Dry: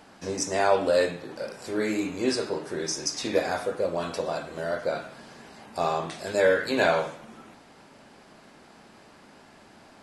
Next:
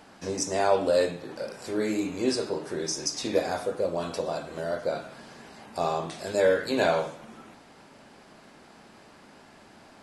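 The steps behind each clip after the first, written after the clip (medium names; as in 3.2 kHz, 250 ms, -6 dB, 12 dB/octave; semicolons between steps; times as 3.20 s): dynamic bell 1.8 kHz, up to -5 dB, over -41 dBFS, Q 0.91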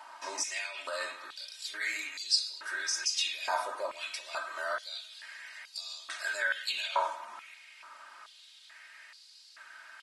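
peak limiter -20 dBFS, peak gain reduction 10 dB; comb 3.2 ms, depth 78%; step-sequenced high-pass 2.3 Hz 980–4400 Hz; trim -2.5 dB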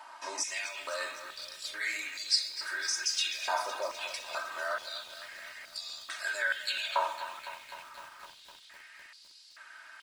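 bit-crushed delay 254 ms, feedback 80%, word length 8-bit, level -13 dB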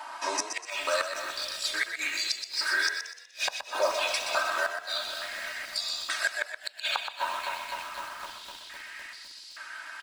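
inverted gate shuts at -23 dBFS, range -37 dB; frequency-shifting echo 123 ms, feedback 37%, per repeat +34 Hz, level -7.5 dB; on a send at -16.5 dB: reverberation RT60 0.35 s, pre-delay 3 ms; on the sum: trim +8.5 dB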